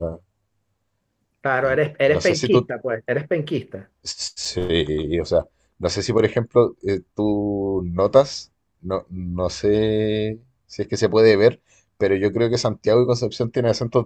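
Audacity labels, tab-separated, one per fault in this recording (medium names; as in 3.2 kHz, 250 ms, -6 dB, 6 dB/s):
4.450000	4.450000	dropout 4.7 ms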